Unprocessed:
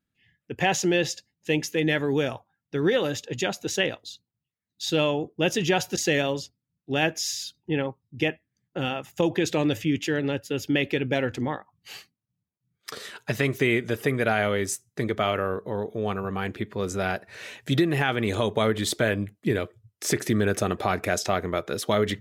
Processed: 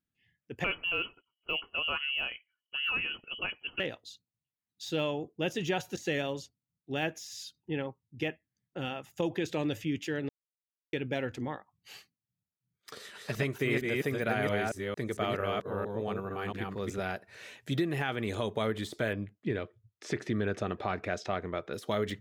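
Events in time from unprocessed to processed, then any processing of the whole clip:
0.64–3.80 s: frequency inversion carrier 3.1 kHz
5.56–7.23 s: band-stop 5 kHz
10.29–10.93 s: mute
12.91–17.00 s: chunks repeated in reverse 226 ms, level -1.5 dB
19.13–21.74 s: low-pass 4 kHz
whole clip: de-esser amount 70%; trim -8 dB

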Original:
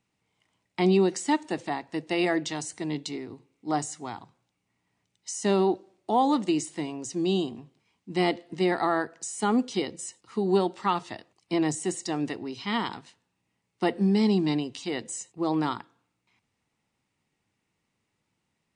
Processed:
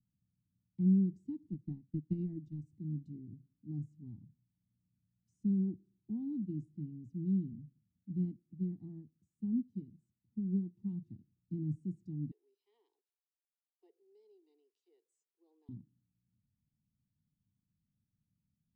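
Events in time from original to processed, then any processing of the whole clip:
1.52–2.71 s: transient shaper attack +9 dB, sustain -7 dB
8.25–10.77 s: upward expansion, over -35 dBFS
12.31–15.69 s: steep high-pass 420 Hz 72 dB/octave
whole clip: inverse Chebyshev low-pass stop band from 530 Hz, stop band 50 dB

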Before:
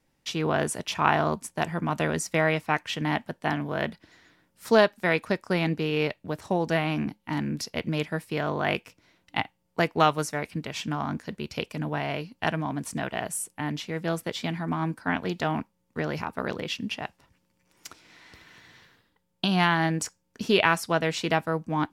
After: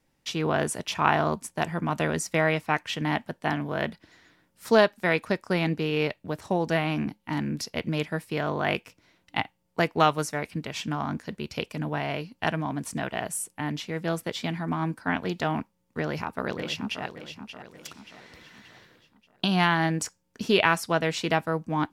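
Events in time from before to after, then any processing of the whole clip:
15.99–17.04 s: echo throw 580 ms, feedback 45%, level -10 dB

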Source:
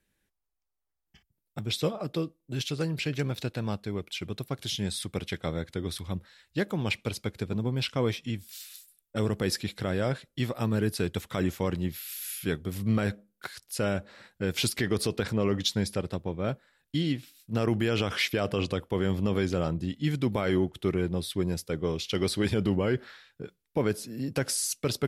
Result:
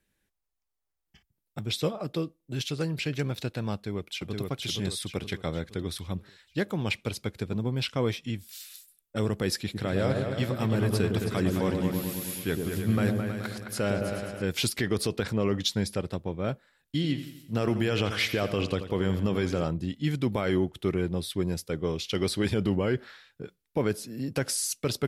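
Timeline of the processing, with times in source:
3.74–4.41 s: echo throw 470 ms, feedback 45%, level -2.5 dB
9.56–14.42 s: delay with an opening low-pass 107 ms, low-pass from 750 Hz, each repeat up 2 oct, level -3 dB
16.95–19.64 s: feedback delay 85 ms, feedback 52%, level -11.5 dB

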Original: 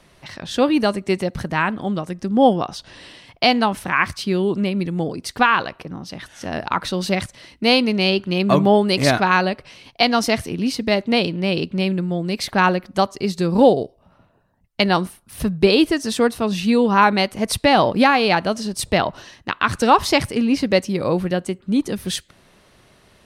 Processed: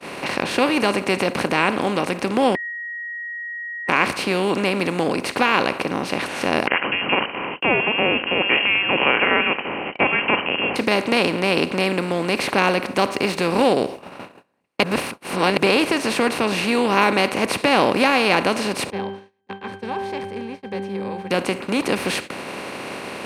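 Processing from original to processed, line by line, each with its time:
2.55–3.89 s: bleep 1.89 kHz -21 dBFS
6.67–10.76 s: frequency inversion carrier 3 kHz
12.87–13.67 s: median filter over 3 samples
14.83–15.57 s: reverse
18.90–21.31 s: pitch-class resonator G, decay 0.69 s
whole clip: spectral levelling over time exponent 0.4; gate -22 dBFS, range -34 dB; high-pass 110 Hz 12 dB/octave; trim -8 dB

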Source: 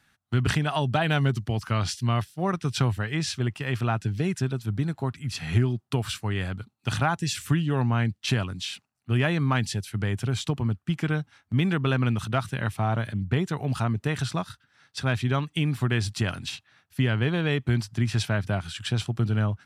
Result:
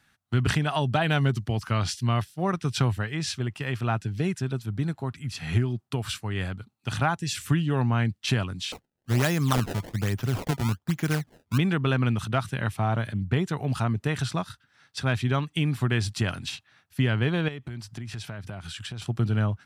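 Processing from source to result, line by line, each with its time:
3.00–7.34 s: tremolo 3.2 Hz, depth 31%
8.72–11.58 s: decimation with a swept rate 23×, swing 160% 1.2 Hz
17.48–19.02 s: compression, threshold -33 dBFS

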